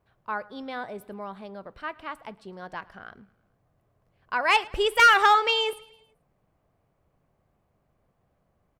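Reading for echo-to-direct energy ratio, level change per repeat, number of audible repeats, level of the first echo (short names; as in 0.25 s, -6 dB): -22.0 dB, -5.0 dB, 3, -23.5 dB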